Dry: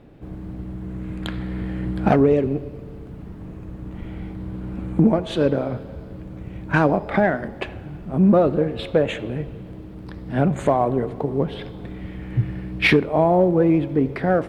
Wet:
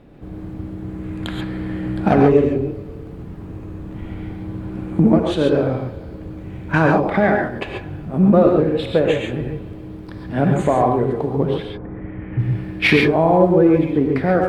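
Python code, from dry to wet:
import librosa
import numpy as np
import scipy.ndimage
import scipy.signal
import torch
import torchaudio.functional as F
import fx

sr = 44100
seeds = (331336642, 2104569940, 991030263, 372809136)

y = fx.lowpass(x, sr, hz=fx.line((11.62, 1400.0), (12.38, 2700.0)), slope=24, at=(11.62, 12.38), fade=0.02)
y = fx.rev_gated(y, sr, seeds[0], gate_ms=160, shape='rising', drr_db=1.0)
y = F.gain(torch.from_numpy(y), 1.0).numpy()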